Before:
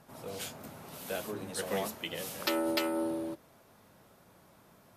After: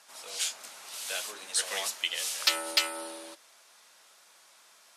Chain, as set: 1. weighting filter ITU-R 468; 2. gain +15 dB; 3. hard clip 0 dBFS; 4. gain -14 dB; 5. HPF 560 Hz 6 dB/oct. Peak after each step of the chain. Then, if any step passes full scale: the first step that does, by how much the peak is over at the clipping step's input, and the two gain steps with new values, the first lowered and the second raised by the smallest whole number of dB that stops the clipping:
-8.0, +7.0, 0.0, -14.0, -12.5 dBFS; step 2, 7.0 dB; step 2 +8 dB, step 4 -7 dB

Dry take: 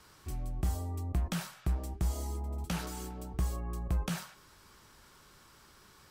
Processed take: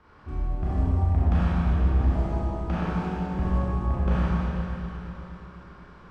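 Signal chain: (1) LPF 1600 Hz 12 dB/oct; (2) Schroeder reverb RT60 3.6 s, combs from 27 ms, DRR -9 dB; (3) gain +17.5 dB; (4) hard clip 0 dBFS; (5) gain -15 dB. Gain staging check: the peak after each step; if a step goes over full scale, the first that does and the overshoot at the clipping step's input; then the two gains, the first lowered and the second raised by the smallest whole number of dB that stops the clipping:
-24.0, -13.5, +4.0, 0.0, -15.0 dBFS; step 3, 4.0 dB; step 3 +13.5 dB, step 5 -11 dB

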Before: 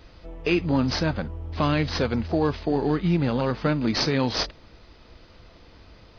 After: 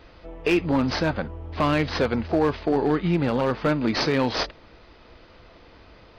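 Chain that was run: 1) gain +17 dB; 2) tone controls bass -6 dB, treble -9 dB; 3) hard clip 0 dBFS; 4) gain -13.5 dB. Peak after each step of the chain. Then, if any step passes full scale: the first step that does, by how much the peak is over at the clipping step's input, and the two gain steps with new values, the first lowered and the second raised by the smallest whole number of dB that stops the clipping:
+8.0, +7.0, 0.0, -13.5 dBFS; step 1, 7.0 dB; step 1 +10 dB, step 4 -6.5 dB

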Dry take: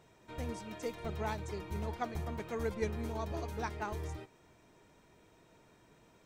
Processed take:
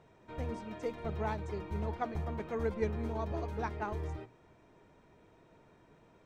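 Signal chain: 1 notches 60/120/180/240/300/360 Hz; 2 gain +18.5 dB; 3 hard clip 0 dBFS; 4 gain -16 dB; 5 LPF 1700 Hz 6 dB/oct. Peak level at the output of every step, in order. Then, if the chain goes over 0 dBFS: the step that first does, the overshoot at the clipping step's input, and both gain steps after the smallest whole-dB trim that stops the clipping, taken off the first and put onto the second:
-22.5, -4.0, -4.0, -20.0, -21.0 dBFS; no overload

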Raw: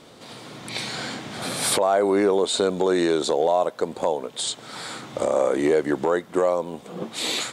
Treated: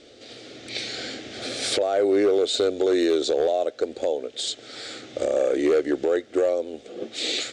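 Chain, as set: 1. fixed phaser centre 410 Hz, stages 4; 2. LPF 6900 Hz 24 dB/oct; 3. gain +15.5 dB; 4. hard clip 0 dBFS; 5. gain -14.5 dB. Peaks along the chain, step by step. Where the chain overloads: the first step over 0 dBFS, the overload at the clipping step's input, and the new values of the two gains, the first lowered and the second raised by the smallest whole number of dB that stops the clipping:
-10.5, -11.0, +4.5, 0.0, -14.5 dBFS; step 3, 4.5 dB; step 3 +10.5 dB, step 5 -9.5 dB

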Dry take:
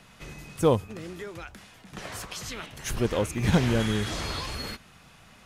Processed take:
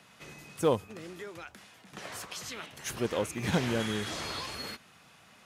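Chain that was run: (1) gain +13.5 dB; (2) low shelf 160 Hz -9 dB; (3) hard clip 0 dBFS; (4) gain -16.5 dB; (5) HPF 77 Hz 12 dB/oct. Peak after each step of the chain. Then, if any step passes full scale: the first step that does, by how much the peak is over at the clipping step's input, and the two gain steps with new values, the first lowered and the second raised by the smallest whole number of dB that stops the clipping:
+4.5, +3.0, 0.0, -16.5, -15.0 dBFS; step 1, 3.0 dB; step 1 +10.5 dB, step 4 -13.5 dB

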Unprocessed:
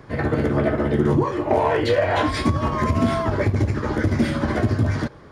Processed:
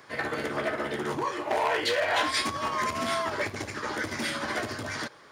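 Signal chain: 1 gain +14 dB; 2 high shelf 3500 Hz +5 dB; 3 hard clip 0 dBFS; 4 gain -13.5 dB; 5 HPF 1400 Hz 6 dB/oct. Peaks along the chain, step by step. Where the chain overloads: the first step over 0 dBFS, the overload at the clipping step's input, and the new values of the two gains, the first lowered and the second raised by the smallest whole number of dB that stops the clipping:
+7.0, +7.0, 0.0, -13.5, -12.5 dBFS; step 1, 7.0 dB; step 1 +7 dB, step 4 -6.5 dB

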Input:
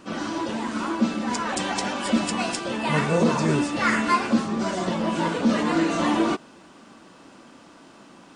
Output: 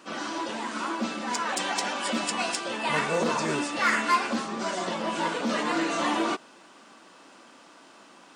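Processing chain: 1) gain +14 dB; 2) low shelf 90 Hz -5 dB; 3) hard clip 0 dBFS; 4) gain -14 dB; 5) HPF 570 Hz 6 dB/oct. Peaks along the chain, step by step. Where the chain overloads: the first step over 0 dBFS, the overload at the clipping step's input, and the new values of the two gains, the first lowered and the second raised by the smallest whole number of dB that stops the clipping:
+6.0, +5.5, 0.0, -14.0, -11.5 dBFS; step 1, 5.5 dB; step 1 +8 dB, step 4 -8 dB

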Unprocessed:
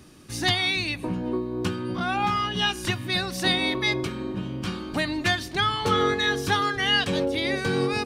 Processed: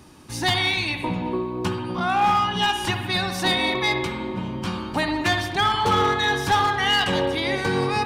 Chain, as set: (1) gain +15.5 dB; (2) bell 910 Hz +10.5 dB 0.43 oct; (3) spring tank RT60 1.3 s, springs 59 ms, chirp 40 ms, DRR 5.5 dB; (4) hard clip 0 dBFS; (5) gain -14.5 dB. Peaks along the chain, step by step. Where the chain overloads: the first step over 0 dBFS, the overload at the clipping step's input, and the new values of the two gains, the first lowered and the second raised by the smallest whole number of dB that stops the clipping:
+6.0, +8.0, +7.5, 0.0, -14.5 dBFS; step 1, 7.5 dB; step 1 +7.5 dB, step 5 -6.5 dB

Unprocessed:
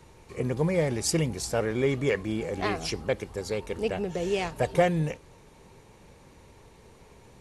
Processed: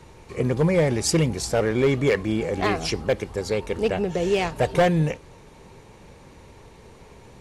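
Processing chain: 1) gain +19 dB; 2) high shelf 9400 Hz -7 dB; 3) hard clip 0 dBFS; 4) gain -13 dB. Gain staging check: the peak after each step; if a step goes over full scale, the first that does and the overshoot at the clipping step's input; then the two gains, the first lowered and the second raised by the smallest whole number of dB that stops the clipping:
+8.5, +8.5, 0.0, -13.0 dBFS; step 1, 8.5 dB; step 1 +10 dB, step 4 -4 dB

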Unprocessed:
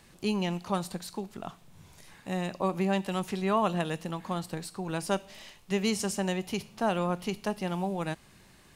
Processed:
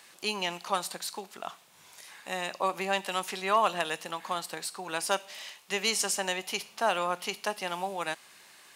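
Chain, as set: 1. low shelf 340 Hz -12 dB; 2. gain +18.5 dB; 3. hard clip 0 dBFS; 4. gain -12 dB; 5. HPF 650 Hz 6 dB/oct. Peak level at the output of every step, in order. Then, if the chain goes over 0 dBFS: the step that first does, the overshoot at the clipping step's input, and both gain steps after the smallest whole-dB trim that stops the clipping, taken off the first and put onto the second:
-15.5, +3.0, 0.0, -12.0, -11.0 dBFS; step 2, 3.0 dB; step 2 +15.5 dB, step 4 -9 dB

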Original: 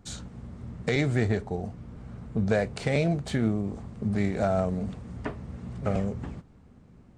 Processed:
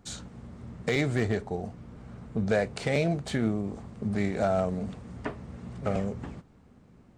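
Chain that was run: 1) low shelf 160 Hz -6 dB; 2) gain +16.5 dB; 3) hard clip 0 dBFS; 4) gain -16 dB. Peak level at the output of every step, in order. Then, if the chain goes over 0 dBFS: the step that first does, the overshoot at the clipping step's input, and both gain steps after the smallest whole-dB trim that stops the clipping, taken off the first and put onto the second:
-12.0, +4.5, 0.0, -16.0 dBFS; step 2, 4.5 dB; step 2 +11.5 dB, step 4 -11 dB

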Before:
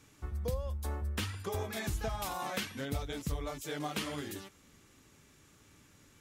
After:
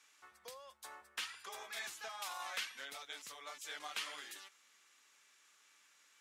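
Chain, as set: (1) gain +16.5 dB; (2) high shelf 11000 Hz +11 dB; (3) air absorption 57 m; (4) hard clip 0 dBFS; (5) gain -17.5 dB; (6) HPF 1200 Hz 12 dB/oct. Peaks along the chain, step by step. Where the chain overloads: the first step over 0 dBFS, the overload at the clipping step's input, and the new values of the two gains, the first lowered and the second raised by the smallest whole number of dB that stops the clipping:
-4.5, -4.5, -5.0, -5.0, -22.5, -26.5 dBFS; no overload

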